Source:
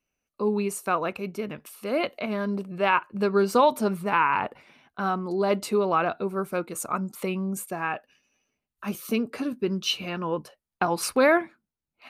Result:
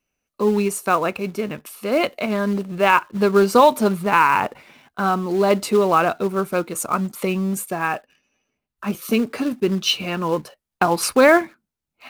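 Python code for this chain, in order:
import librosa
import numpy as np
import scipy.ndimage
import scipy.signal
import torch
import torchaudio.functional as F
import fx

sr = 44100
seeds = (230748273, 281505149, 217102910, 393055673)

p1 = fx.high_shelf(x, sr, hz=3700.0, db=-7.0, at=(7.86, 9.02))
p2 = fx.quant_companded(p1, sr, bits=4)
p3 = p1 + (p2 * 10.0 ** (-9.0 / 20.0))
y = p3 * 10.0 ** (4.0 / 20.0)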